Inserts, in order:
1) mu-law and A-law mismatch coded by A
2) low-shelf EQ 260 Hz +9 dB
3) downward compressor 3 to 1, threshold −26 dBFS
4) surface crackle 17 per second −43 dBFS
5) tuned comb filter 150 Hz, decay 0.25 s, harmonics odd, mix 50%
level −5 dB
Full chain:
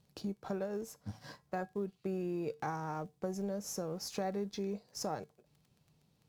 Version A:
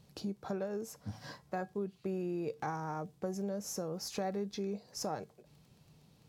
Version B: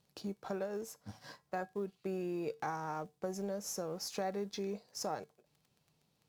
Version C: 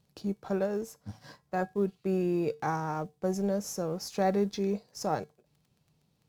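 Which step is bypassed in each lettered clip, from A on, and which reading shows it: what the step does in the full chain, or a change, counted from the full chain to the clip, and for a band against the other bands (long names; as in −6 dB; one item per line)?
1, distortion level −27 dB
2, 125 Hz band −4.5 dB
3, average gain reduction 6.0 dB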